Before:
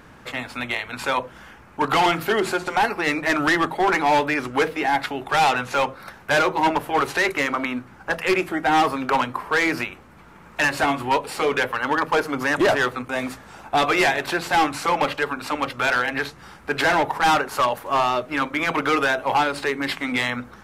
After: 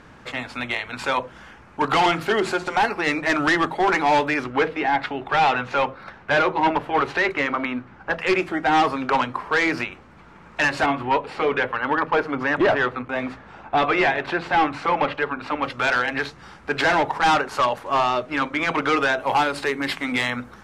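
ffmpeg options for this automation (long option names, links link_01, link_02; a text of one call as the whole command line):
ffmpeg -i in.wav -af "asetnsamples=nb_out_samples=441:pad=0,asendcmd='4.44 lowpass f 3600;8.2 lowpass f 6100;10.86 lowpass f 2900;15.65 lowpass f 6900;19.2 lowpass f 12000',lowpass=7700" out.wav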